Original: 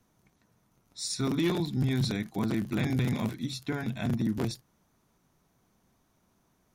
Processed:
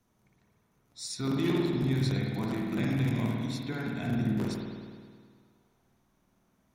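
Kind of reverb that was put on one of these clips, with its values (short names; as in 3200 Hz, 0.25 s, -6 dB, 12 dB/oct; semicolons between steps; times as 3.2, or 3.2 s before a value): spring tank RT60 1.9 s, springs 52 ms, chirp 55 ms, DRR -1.5 dB; gain -4.5 dB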